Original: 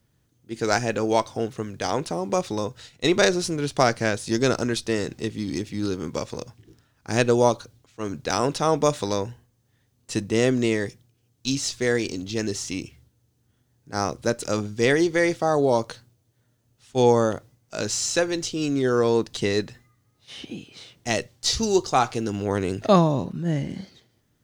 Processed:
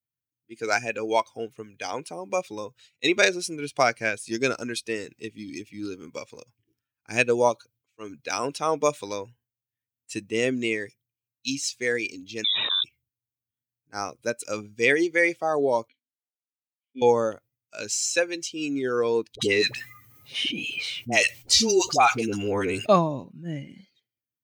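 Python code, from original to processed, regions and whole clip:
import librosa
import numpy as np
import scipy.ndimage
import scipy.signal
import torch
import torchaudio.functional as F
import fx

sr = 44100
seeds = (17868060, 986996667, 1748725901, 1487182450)

y = fx.chain(x, sr, fx.freq_invert(carrier_hz=3800),
    fx.env_flatten(amount_pct=100), at=(12.44, 12.84))
y = fx.chain(y, sr, fx.high_shelf(hz=5000.0, db=-5.5),
    fx.leveller(passes=1),
    fx.vowel_filter(vowel='i'), at=(15.88, 17.02))
y = fx.chain(y, sr, fx.dispersion(late='highs', ms=67.0, hz=650.0),
    fx.env_flatten(amount_pct=50), at=(19.35, 22.86))
y = fx.bin_expand(y, sr, power=1.5)
y = fx.highpass(y, sr, hz=400.0, slope=6)
y = fx.peak_eq(y, sr, hz=2400.0, db=9.5, octaves=0.33)
y = y * 10.0 ** (2.5 / 20.0)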